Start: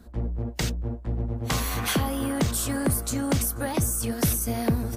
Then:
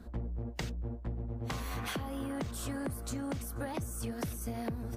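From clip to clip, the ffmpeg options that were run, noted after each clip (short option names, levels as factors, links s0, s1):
-af "highshelf=f=4300:g=-9,acompressor=threshold=0.02:ratio=10"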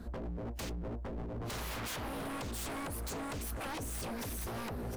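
-af "aeval=exprs='0.0119*(abs(mod(val(0)/0.0119+3,4)-2)-1)':c=same,volume=1.58"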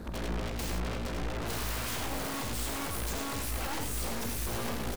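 -filter_complex "[0:a]aeval=exprs='0.0188*(cos(1*acos(clip(val(0)/0.0188,-1,1)))-cos(1*PI/2))+0.00473*(cos(3*acos(clip(val(0)/0.0188,-1,1)))-cos(3*PI/2))+0.00531*(cos(4*acos(clip(val(0)/0.0188,-1,1)))-cos(4*PI/2))+0.00596*(cos(5*acos(clip(val(0)/0.0188,-1,1)))-cos(5*PI/2))+0.00299*(cos(6*acos(clip(val(0)/0.0188,-1,1)))-cos(6*PI/2))':c=same,asplit=2[s0][s1];[s1]aecho=0:1:46|84|101:0.282|0.447|0.447[s2];[s0][s2]amix=inputs=2:normalize=0,volume=1.41"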